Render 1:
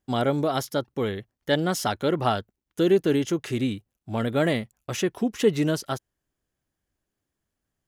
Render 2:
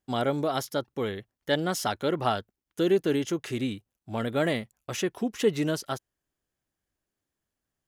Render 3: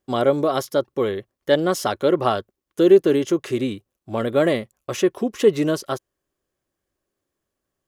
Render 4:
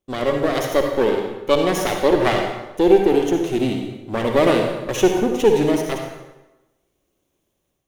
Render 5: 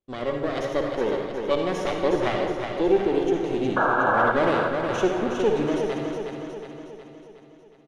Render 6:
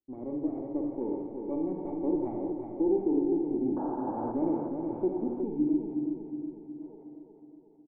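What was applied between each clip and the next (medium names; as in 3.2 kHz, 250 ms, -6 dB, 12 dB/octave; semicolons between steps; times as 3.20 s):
bass shelf 270 Hz -4 dB; trim -2 dB
small resonant body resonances 380/540/1100 Hz, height 8 dB, ringing for 25 ms; trim +3 dB
comb filter that takes the minimum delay 0.31 ms; level rider gain up to 10.5 dB; reverberation RT60 1.0 s, pre-delay 47 ms, DRR 2.5 dB; trim -2.5 dB
painted sound noise, 3.76–4.32 s, 470–1700 Hz -14 dBFS; distance through air 85 m; on a send: feedback delay 365 ms, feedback 55%, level -6 dB; on the sum: trim -7 dB
cascade formant filter u; time-frequency box 5.43–6.82 s, 370–2200 Hz -9 dB; doubling 43 ms -10.5 dB; trim +2 dB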